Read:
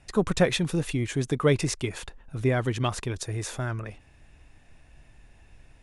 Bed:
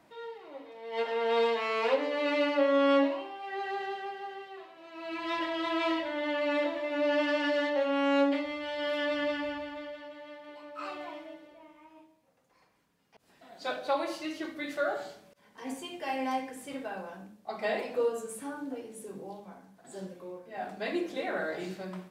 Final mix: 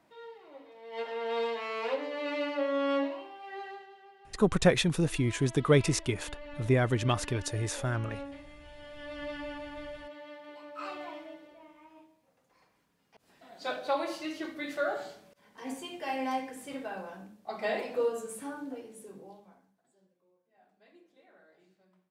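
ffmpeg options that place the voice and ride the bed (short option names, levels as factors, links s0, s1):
-filter_complex "[0:a]adelay=4250,volume=0.891[s0];[1:a]volume=3.55,afade=t=out:st=3.58:d=0.28:silence=0.266073,afade=t=in:st=8.96:d=0.99:silence=0.158489,afade=t=out:st=18.45:d=1.5:silence=0.0421697[s1];[s0][s1]amix=inputs=2:normalize=0"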